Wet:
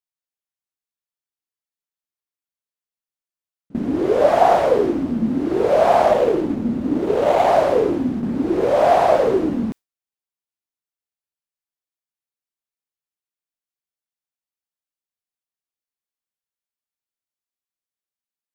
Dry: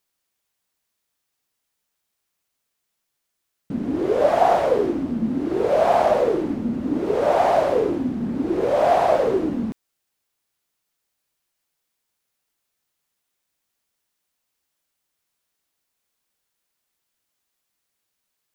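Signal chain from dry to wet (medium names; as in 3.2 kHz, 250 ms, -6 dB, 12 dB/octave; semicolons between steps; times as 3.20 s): 6.12–7.47 s: median filter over 25 samples; gate with hold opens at -19 dBFS; trim +3 dB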